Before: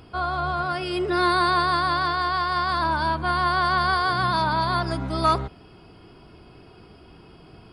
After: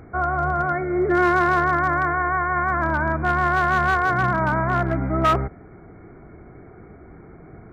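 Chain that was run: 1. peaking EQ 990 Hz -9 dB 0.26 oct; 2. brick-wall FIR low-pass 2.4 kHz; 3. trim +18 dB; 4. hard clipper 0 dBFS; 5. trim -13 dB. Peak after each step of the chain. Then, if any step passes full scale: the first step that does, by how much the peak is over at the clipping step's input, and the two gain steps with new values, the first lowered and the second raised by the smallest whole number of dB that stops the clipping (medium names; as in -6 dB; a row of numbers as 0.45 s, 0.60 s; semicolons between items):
-10.5 dBFS, -11.0 dBFS, +7.0 dBFS, 0.0 dBFS, -13.0 dBFS; step 3, 7.0 dB; step 3 +11 dB, step 5 -6 dB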